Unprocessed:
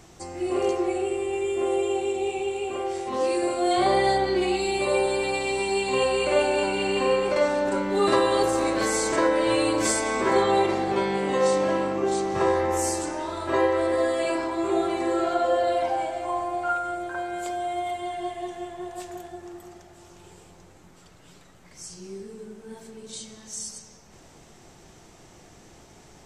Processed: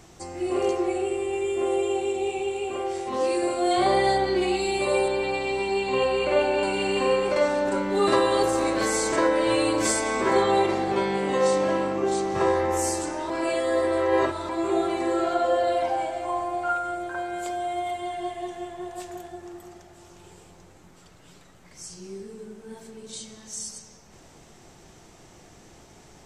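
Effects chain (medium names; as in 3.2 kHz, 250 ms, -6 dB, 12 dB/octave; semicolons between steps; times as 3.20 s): 5.08–6.63 s: peaking EQ 10 kHz -14 dB 1.2 oct; 13.30–14.49 s: reverse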